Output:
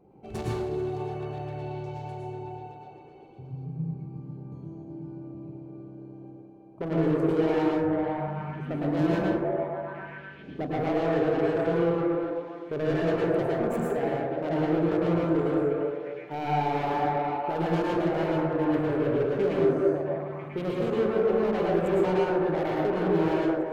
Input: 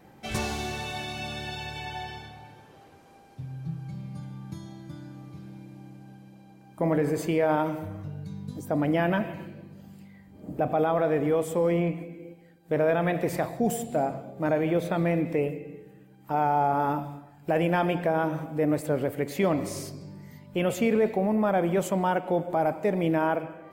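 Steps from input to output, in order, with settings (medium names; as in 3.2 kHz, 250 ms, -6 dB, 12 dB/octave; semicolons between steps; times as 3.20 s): local Wiener filter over 25 samples; on a send: repeats whose band climbs or falls 249 ms, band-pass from 430 Hz, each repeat 0.7 oct, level 0 dB; on the sum: saturation -25.5 dBFS, distortion -9 dB; in parallel at -2.5 dB: level held to a coarse grid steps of 16 dB; on the sum: peaking EQ 400 Hz +11 dB 0.27 oct; plate-style reverb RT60 0.72 s, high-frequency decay 0.5×, pre-delay 95 ms, DRR -4 dB; trim -7.5 dB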